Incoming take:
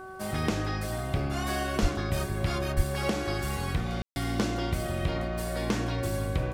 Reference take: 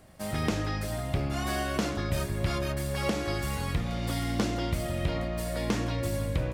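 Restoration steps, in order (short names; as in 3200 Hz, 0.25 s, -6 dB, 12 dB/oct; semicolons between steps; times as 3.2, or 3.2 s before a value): de-hum 377.9 Hz, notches 4; de-plosive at 1.81/2.76; room tone fill 4.02–4.16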